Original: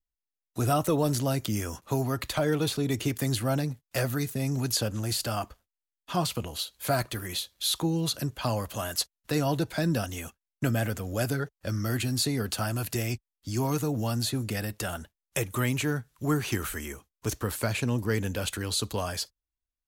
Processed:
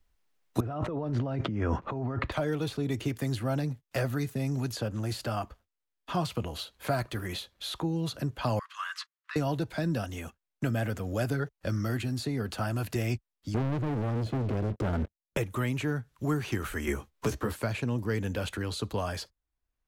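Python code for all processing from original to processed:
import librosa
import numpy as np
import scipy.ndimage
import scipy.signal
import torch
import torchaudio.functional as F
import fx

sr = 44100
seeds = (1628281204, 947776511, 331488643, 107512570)

y = fx.chain(x, sr, fx.lowpass(hz=1700.0, slope=12),
    fx.over_compress(threshold_db=-37.0, ratio=-1.0), at=(0.6, 2.32))
y = fx.chain(y, sr, fx.cheby1_highpass(hz=1100.0, order=5),
    fx.spacing_loss(db_at_10k=21), at=(8.59, 9.36))
y = fx.chain(y, sr, fx.moving_average(points=48),
    fx.leveller(passes=5), at=(13.54, 15.37))
y = fx.chain(y, sr, fx.doubler(ms=14.0, db=-3),
    fx.band_squash(depth_pct=70), at=(16.87, 17.53))
y = fx.rider(y, sr, range_db=10, speed_s=0.5)
y = fx.high_shelf(y, sr, hz=4500.0, db=-12.0)
y = fx.band_squash(y, sr, depth_pct=40)
y = y * librosa.db_to_amplitude(-2.0)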